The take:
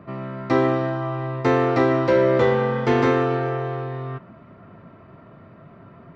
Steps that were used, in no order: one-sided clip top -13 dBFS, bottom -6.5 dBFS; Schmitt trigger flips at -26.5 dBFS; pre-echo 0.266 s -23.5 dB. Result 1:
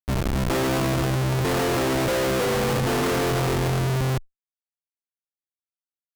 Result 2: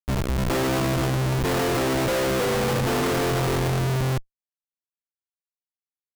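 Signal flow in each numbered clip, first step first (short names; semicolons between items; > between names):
pre-echo > Schmitt trigger > one-sided clip; one-sided clip > pre-echo > Schmitt trigger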